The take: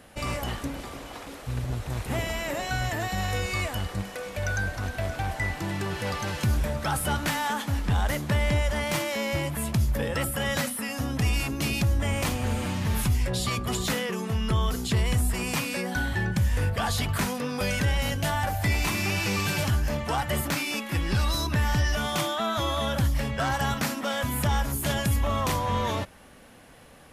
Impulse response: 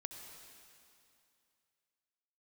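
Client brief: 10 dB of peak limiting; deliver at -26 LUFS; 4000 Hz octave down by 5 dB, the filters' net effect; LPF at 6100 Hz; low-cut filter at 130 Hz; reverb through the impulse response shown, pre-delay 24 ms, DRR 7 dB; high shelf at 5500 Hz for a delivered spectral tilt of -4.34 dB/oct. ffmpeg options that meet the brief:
-filter_complex "[0:a]highpass=130,lowpass=6.1k,equalizer=f=4k:t=o:g=-3.5,highshelf=f=5.5k:g=-7,alimiter=level_in=1dB:limit=-24dB:level=0:latency=1,volume=-1dB,asplit=2[a][b];[1:a]atrim=start_sample=2205,adelay=24[c];[b][c]afir=irnorm=-1:irlink=0,volume=-4dB[d];[a][d]amix=inputs=2:normalize=0,volume=7dB"

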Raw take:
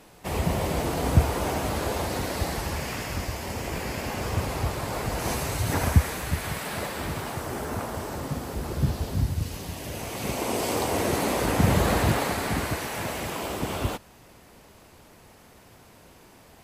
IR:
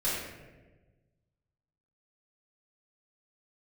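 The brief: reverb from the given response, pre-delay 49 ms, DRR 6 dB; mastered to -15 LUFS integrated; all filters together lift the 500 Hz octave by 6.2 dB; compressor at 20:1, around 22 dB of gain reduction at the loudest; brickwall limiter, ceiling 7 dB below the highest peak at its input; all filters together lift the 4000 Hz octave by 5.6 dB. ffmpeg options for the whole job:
-filter_complex "[0:a]equalizer=f=500:t=o:g=7.5,equalizer=f=4k:t=o:g=7,acompressor=threshold=-33dB:ratio=20,alimiter=level_in=6dB:limit=-24dB:level=0:latency=1,volume=-6dB,asplit=2[a][b];[1:a]atrim=start_sample=2205,adelay=49[c];[b][c]afir=irnorm=-1:irlink=0,volume=-14.5dB[d];[a][d]amix=inputs=2:normalize=0,volume=24dB"

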